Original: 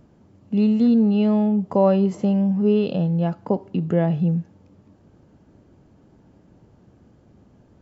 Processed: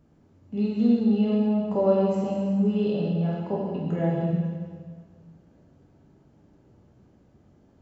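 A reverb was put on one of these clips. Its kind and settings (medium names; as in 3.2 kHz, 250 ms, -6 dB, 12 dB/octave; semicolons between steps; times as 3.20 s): plate-style reverb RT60 1.8 s, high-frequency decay 0.95×, DRR -5 dB; trim -10.5 dB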